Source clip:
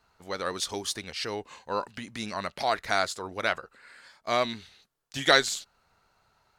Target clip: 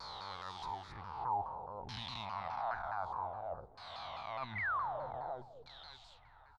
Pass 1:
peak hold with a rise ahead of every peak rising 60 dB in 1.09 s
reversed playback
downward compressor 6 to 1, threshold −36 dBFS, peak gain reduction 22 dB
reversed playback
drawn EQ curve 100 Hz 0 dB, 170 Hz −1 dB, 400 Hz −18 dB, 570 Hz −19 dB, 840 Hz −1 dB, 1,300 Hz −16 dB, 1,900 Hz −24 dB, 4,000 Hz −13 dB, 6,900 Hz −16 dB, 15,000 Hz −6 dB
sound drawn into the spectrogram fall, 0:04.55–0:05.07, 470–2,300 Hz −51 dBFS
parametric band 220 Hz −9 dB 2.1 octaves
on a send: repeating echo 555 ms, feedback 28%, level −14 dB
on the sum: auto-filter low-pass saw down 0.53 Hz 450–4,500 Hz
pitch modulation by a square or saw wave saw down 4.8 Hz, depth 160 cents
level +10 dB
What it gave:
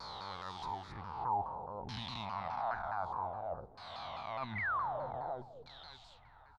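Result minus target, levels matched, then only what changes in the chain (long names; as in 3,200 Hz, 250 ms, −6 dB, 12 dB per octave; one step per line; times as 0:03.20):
250 Hz band +4.0 dB
change: parametric band 220 Hz −15 dB 2.1 octaves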